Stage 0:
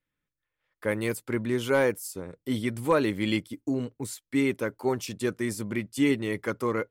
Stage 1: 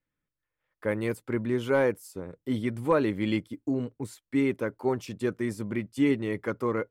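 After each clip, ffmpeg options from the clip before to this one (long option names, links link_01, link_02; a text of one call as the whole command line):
ffmpeg -i in.wav -af "highshelf=frequency=3000:gain=-11" out.wav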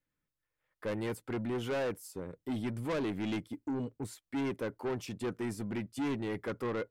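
ffmpeg -i in.wav -af "asoftclip=type=tanh:threshold=-29dB,volume=-1.5dB" out.wav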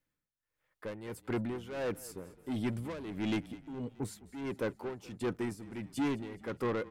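ffmpeg -i in.wav -filter_complex "[0:a]tremolo=f=1.5:d=0.78,asplit=6[link_01][link_02][link_03][link_04][link_05][link_06];[link_02]adelay=210,afreqshift=-30,volume=-19dB[link_07];[link_03]adelay=420,afreqshift=-60,volume=-24.2dB[link_08];[link_04]adelay=630,afreqshift=-90,volume=-29.4dB[link_09];[link_05]adelay=840,afreqshift=-120,volume=-34.6dB[link_10];[link_06]adelay=1050,afreqshift=-150,volume=-39.8dB[link_11];[link_01][link_07][link_08][link_09][link_10][link_11]amix=inputs=6:normalize=0,volume=2.5dB" out.wav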